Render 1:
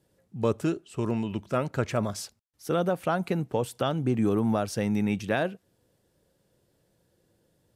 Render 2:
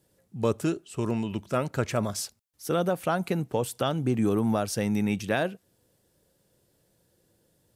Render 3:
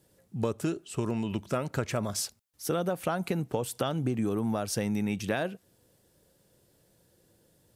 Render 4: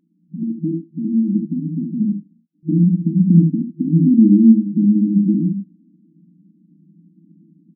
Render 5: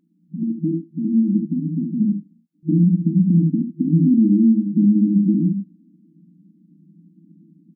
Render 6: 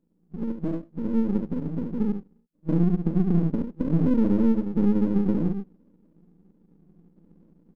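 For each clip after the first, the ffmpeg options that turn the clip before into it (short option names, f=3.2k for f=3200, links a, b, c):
-af "highshelf=f=5.5k:g=7.5"
-af "acompressor=threshold=-29dB:ratio=4,volume=2.5dB"
-af "aecho=1:1:40|70:0.316|0.562,afftfilt=real='re*between(b*sr/4096,160,340)':imag='im*between(b*sr/4096,160,340)':win_size=4096:overlap=0.75,asubboost=boost=10:cutoff=230,volume=7dB"
-af "alimiter=limit=-8dB:level=0:latency=1:release=133"
-af "aeval=exprs='if(lt(val(0),0),0.251*val(0),val(0))':c=same,volume=-3dB"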